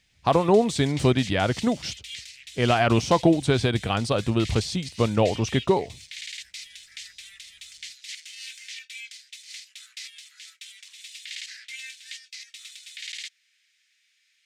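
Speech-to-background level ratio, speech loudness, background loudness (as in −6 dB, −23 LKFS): 16.0 dB, −23.0 LKFS, −39.0 LKFS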